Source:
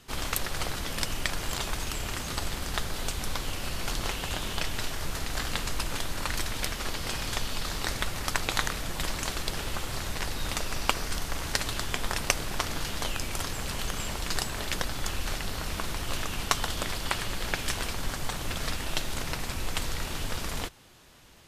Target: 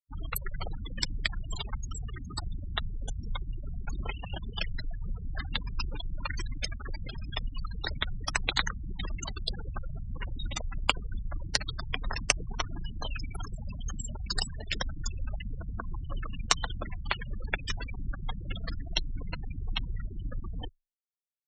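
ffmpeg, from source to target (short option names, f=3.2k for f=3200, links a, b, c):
-filter_complex "[0:a]afftfilt=real='re*gte(hypot(re,im),0.0562)':imag='im*gte(hypot(re,im),0.0562)':win_size=1024:overlap=0.75,anlmdn=0.00398,acrossover=split=160|2400[a][b][c];[c]dynaudnorm=f=470:g=3:m=8dB[d];[a][b][d]amix=inputs=3:normalize=0,afreqshift=16,volume=-2dB"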